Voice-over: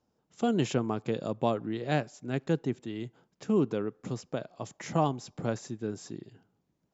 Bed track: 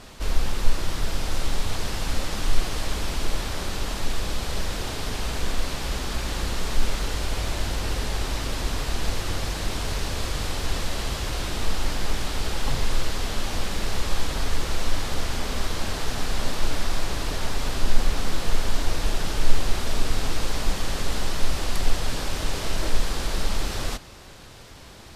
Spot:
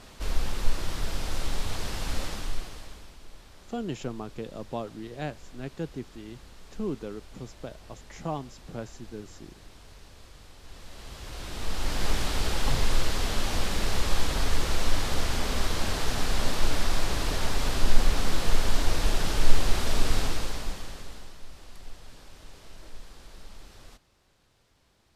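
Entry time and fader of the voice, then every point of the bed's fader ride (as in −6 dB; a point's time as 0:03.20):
3.30 s, −6.0 dB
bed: 0:02.25 −4.5 dB
0:03.17 −22.5 dB
0:10.58 −22.5 dB
0:12.06 −0.5 dB
0:20.18 −0.5 dB
0:21.41 −21.5 dB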